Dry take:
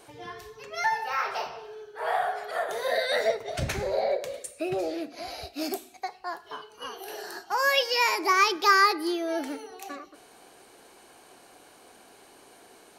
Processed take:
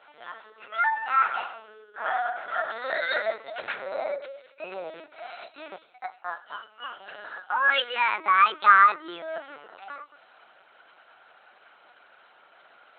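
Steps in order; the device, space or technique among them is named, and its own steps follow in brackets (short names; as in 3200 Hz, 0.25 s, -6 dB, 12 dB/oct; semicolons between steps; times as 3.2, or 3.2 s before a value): talking toy (LPC vocoder at 8 kHz pitch kept; HPF 650 Hz 12 dB/oct; bell 1400 Hz +11 dB 0.32 oct)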